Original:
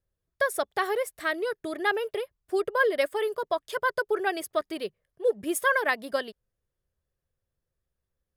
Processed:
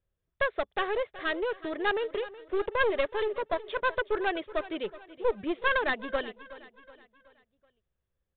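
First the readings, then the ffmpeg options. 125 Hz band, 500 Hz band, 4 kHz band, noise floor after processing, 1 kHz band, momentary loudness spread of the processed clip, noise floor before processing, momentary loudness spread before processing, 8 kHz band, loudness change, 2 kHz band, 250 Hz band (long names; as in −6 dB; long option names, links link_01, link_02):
can't be measured, −2.0 dB, −0.5 dB, −83 dBFS, −2.5 dB, 9 LU, −85 dBFS, 8 LU, below −40 dB, −2.5 dB, −2.5 dB, −1.0 dB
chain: -af "aresample=8000,aeval=exprs='clip(val(0),-1,0.0376)':channel_layout=same,aresample=44100,aecho=1:1:373|746|1119|1492:0.141|0.0636|0.0286|0.0129"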